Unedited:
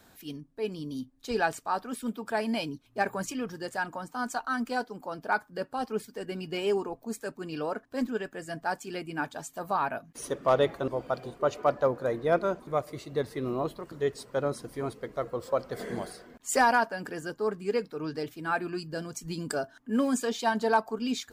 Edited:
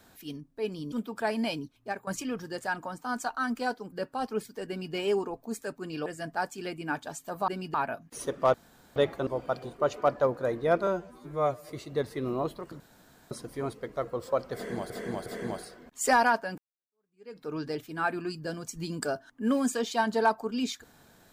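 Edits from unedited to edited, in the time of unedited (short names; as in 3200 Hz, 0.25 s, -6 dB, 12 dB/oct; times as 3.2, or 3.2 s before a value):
0.92–2.02 cut
2.57–3.17 fade out equal-power, to -17 dB
5.02–5.51 cut
6.27–6.53 copy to 9.77
7.65–8.35 cut
10.57 insert room tone 0.42 s
12.48–12.89 stretch 2×
14–14.51 room tone
15.74–16.1 loop, 3 plays
17.06–17.91 fade in exponential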